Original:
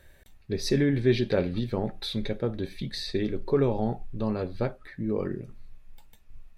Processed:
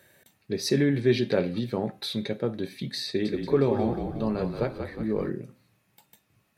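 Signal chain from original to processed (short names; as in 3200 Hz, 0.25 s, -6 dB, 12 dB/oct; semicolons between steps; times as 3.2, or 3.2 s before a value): HPF 120 Hz 24 dB/oct; high shelf 7800 Hz +6 dB; notch 3500 Hz, Q 30; de-hum 259.3 Hz, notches 16; 3.07–5.3 frequency-shifting echo 0.18 s, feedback 53%, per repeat -37 Hz, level -6.5 dB; gain +1 dB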